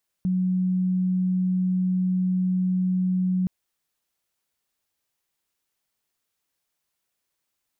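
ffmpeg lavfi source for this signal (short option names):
-f lavfi -i "sine=f=184:d=3.22:r=44100,volume=-1.94dB"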